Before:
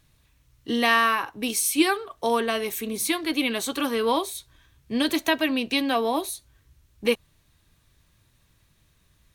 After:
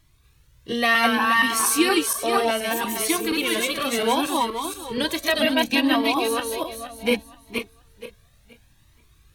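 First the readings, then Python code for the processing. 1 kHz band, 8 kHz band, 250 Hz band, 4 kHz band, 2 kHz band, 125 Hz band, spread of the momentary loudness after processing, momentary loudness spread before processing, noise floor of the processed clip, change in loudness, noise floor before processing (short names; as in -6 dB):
+3.5 dB, +4.0 dB, +2.0 dB, +4.0 dB, +4.5 dB, n/a, 11 LU, 9 LU, -58 dBFS, +2.5 dB, -64 dBFS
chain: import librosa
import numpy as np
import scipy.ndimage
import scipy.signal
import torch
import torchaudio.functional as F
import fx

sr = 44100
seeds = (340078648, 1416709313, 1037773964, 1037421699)

y = fx.reverse_delay_fb(x, sr, ms=237, feedback_pct=49, wet_db=-0.5)
y = fx.comb_cascade(y, sr, direction='rising', hz=0.67)
y = y * 10.0 ** (5.0 / 20.0)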